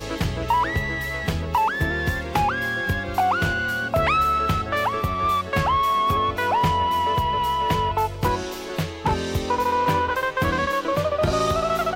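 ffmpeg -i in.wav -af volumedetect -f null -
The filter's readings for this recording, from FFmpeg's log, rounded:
mean_volume: -22.5 dB
max_volume: -7.9 dB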